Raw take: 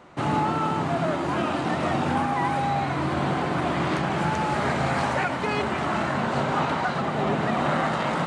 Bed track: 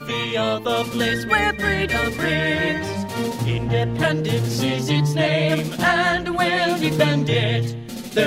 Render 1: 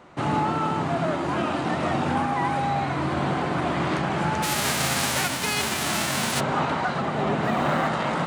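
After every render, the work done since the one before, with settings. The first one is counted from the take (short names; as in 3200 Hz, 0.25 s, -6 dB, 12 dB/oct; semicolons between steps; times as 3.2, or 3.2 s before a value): 4.42–6.39 spectral whitening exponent 0.3; 7.44–7.88 G.711 law mismatch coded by mu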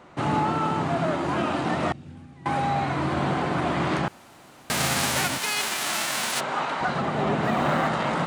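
1.92–2.46 passive tone stack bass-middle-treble 10-0-1; 4.08–4.7 room tone; 5.38–6.81 HPF 710 Hz 6 dB/oct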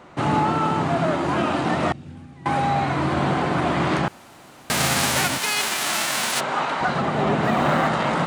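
gain +3.5 dB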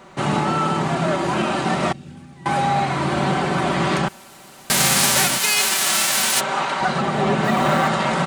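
high shelf 4100 Hz +8 dB; comb 5.2 ms, depth 49%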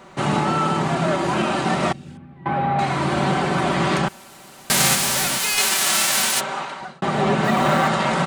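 2.17–2.79 air absorption 500 m; 4.95–5.58 overloaded stage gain 18.5 dB; 6.2–7.02 fade out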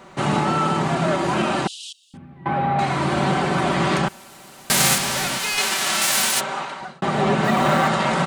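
1.67–2.14 steep high-pass 2900 Hz 96 dB/oct; 4.98–6.02 high shelf 7800 Hz -10 dB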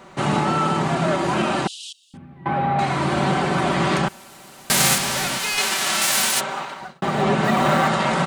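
6.5–7.23 G.711 law mismatch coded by A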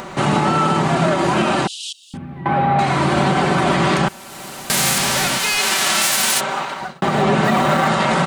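in parallel at -2.5 dB: upward compressor, threshold -21 dBFS; on the sum: limiter -7 dBFS, peak gain reduction 6.5 dB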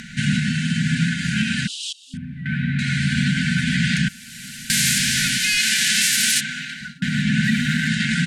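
FFT band-reject 260–1400 Hz; LPF 11000 Hz 12 dB/oct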